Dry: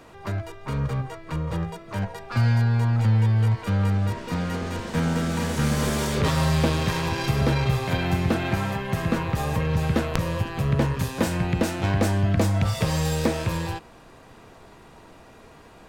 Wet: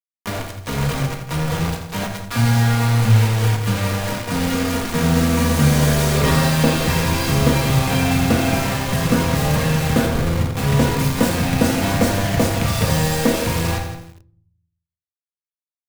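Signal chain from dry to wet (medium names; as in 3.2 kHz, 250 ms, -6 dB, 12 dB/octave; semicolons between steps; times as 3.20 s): 10.06–10.57 s: steep low-pass 520 Hz 36 dB/octave; bit crusher 5-bit; feedback delay 168 ms, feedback 18%, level -15.5 dB; simulated room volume 830 m³, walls furnished, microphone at 1.8 m; bit-crushed delay 84 ms, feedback 35%, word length 7-bit, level -10.5 dB; trim +3 dB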